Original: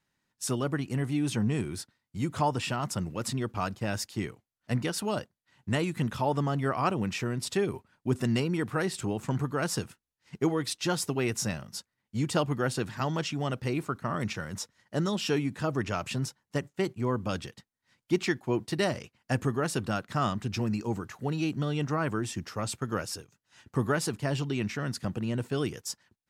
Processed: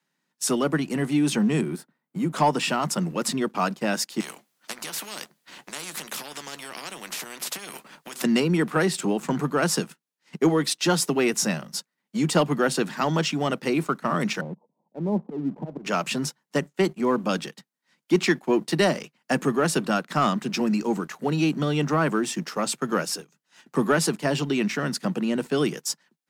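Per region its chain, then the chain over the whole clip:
0:01.61–0:02.33: parametric band 5,200 Hz −14.5 dB 2.4 octaves + multiband upward and downward compressor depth 40%
0:04.20–0:08.24: downward compressor 10 to 1, threshold −33 dBFS + double-tracking delay 14 ms −13 dB + every bin compressed towards the loudest bin 4 to 1
0:14.41–0:15.85: Butterworth low-pass 950 Hz 72 dB per octave + volume swells 232 ms
whole clip: Butterworth high-pass 150 Hz 72 dB per octave; leveller curve on the samples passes 1; level +4 dB

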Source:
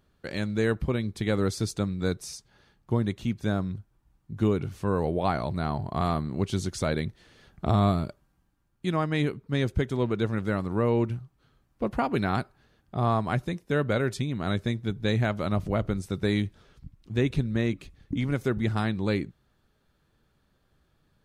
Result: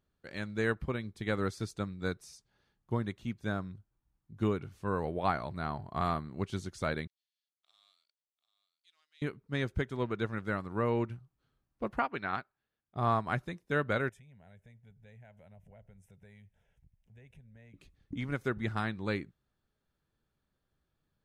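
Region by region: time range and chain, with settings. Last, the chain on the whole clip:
0:07.07–0:09.22: mu-law and A-law mismatch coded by A + four-pole ladder band-pass 5,000 Hz, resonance 25% + single-tap delay 743 ms −13 dB
0:11.99–0:12.96: low-pass filter 3,300 Hz + spectral tilt +2 dB per octave + expander for the loud parts, over −44 dBFS
0:14.09–0:17.74: phaser with its sweep stopped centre 1,200 Hz, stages 6 + downward compressor 2.5 to 1, threshold −46 dBFS
whole clip: dynamic equaliser 1,500 Hz, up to +7 dB, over −44 dBFS, Q 0.83; expander for the loud parts 1.5 to 1, over −34 dBFS; level −6 dB

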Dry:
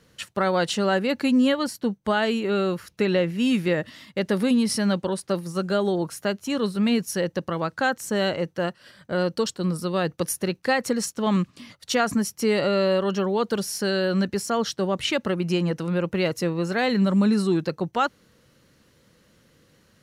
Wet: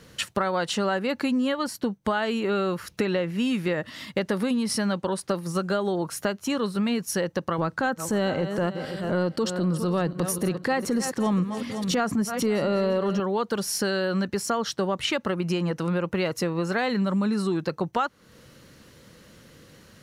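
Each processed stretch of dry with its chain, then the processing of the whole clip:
0:07.58–0:13.20: feedback delay that plays each chunk backwards 255 ms, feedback 47%, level −14 dB + parametric band 190 Hz +7.5 dB 3 octaves + transient designer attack −7 dB, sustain +2 dB
whole clip: dynamic equaliser 1,100 Hz, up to +5 dB, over −39 dBFS, Q 1.1; downward compressor 4 to 1, threshold −33 dBFS; level +8 dB

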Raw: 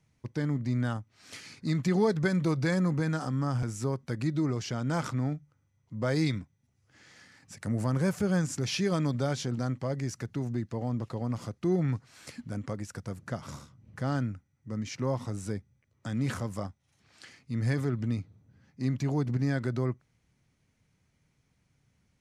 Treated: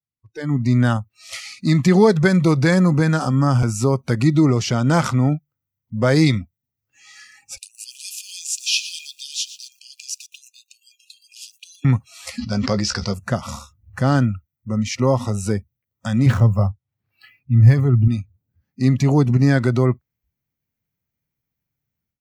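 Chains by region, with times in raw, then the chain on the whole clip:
0:07.57–0:11.85: linear-phase brick-wall high-pass 2,400 Hz + feedback echo at a low word length 119 ms, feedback 35%, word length 9 bits, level −13.5 dB
0:12.38–0:13.14: low-pass with resonance 4,900 Hz, resonance Q 5.2 + double-tracking delay 15 ms −11 dB + level that may fall only so fast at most 34 dB per second
0:16.26–0:18.08: running median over 5 samples + parametric band 110 Hz +11.5 dB 0.64 octaves + one half of a high-frequency compander decoder only
whole clip: automatic gain control gain up to 15.5 dB; noise reduction from a noise print of the clip's start 27 dB; level −1 dB

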